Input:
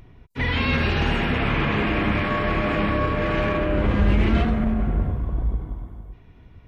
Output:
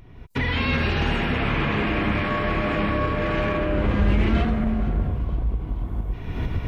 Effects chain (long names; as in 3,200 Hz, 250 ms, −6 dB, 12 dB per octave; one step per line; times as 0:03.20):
camcorder AGC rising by 37 dB per second
on a send: delay with a high-pass on its return 469 ms, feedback 62%, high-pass 3,200 Hz, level −15.5 dB
on the sum: level −1 dB